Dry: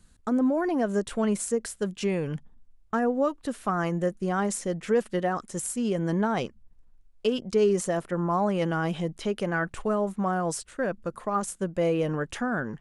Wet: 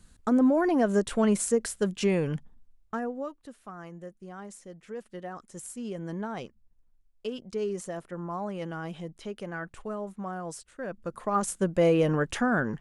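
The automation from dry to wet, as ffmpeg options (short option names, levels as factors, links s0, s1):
-af "volume=11.2,afade=t=out:st=2.19:d=0.92:silence=0.281838,afade=t=out:st=3.11:d=0.46:silence=0.446684,afade=t=in:st=4.9:d=0.83:silence=0.446684,afade=t=in:st=10.81:d=0.79:silence=0.251189"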